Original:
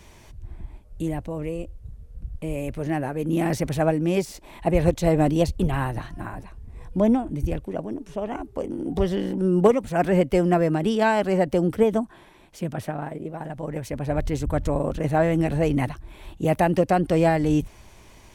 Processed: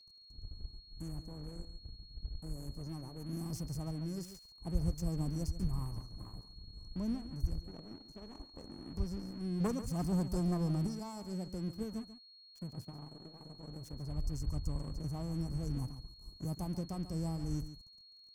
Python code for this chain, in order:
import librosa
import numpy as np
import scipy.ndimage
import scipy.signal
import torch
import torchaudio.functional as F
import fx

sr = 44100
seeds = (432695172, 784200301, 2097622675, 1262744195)

y = fx.brickwall_bandstop(x, sr, low_hz=1300.0, high_hz=4600.0)
y = fx.tone_stack(y, sr, knobs='6-0-2')
y = fx.leveller(y, sr, passes=2, at=(9.6, 10.87))
y = np.sign(y) * np.maximum(np.abs(y) - 10.0 ** (-57.0 / 20.0), 0.0)
y = y + 10.0 ** (-63.0 / 20.0) * np.sin(2.0 * np.pi * 4300.0 * np.arange(len(y)) / sr)
y = y + 10.0 ** (-13.0 / 20.0) * np.pad(y, (int(140 * sr / 1000.0), 0))[:len(y)]
y = fx.dynamic_eq(y, sr, hz=400.0, q=0.84, threshold_db=-52.0, ratio=4.0, max_db=-4)
y = y * 10.0 ** (5.0 / 20.0)